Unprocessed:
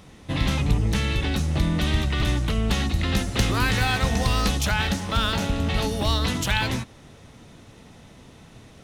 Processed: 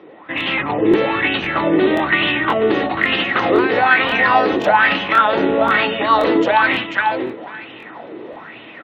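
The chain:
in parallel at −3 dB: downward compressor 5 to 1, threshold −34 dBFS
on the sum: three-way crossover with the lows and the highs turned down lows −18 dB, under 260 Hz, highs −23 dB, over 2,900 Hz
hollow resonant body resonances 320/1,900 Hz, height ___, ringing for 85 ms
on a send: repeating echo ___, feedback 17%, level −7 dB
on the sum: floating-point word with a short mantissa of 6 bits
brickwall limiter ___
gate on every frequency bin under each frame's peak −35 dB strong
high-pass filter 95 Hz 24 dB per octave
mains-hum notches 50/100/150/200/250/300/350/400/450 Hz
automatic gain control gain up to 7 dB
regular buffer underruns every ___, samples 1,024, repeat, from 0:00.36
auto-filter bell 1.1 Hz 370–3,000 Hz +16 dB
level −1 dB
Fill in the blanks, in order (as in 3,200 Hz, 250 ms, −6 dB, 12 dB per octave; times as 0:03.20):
9 dB, 491 ms, −17 dBFS, 0.53 s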